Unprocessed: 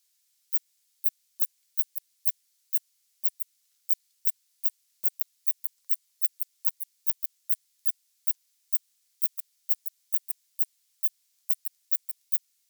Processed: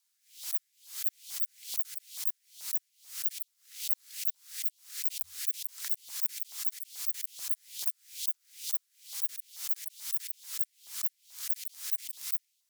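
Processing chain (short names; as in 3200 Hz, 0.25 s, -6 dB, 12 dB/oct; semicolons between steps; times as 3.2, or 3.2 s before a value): LFO high-pass saw up 2.3 Hz 890–3700 Hz; frequency shift -88 Hz; backwards sustainer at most 140 dB/s; gain -5.5 dB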